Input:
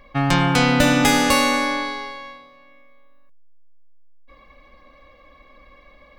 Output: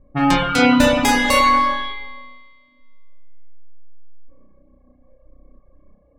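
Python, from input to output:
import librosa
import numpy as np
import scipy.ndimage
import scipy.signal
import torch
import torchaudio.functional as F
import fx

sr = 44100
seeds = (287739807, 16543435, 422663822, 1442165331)

y = fx.env_lowpass(x, sr, base_hz=310.0, full_db=-17.5)
y = fx.rev_spring(y, sr, rt60_s=1.8, pass_ms=(32,), chirp_ms=45, drr_db=-3.5)
y = fx.dereverb_blind(y, sr, rt60_s=1.2)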